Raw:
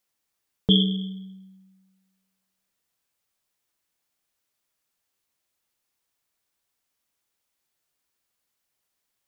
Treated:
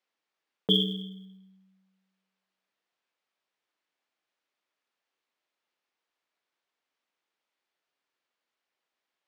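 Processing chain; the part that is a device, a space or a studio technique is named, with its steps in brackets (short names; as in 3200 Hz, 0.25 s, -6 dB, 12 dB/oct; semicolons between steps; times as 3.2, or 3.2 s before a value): early digital voice recorder (BPF 290–3400 Hz; block floating point 7-bit)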